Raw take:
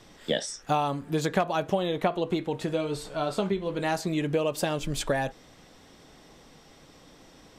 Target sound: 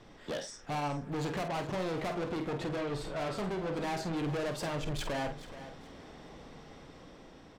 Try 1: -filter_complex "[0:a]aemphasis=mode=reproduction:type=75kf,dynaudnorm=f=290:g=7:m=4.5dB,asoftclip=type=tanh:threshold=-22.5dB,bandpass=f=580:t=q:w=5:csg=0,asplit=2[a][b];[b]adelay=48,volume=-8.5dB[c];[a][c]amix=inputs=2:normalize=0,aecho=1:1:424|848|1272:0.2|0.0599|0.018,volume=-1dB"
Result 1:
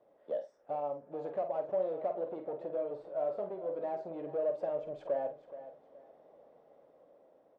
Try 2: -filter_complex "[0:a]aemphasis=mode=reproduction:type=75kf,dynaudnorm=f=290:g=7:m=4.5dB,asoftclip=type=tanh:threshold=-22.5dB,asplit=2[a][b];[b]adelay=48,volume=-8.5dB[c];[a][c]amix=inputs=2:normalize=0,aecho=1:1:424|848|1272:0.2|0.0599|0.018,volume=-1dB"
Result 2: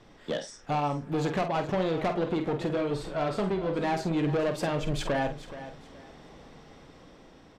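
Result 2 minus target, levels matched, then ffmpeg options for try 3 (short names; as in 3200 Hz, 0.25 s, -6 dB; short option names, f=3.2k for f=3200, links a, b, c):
soft clip: distortion -6 dB
-filter_complex "[0:a]aemphasis=mode=reproduction:type=75kf,dynaudnorm=f=290:g=7:m=4.5dB,asoftclip=type=tanh:threshold=-32dB,asplit=2[a][b];[b]adelay=48,volume=-8.5dB[c];[a][c]amix=inputs=2:normalize=0,aecho=1:1:424|848|1272:0.2|0.0599|0.018,volume=-1dB"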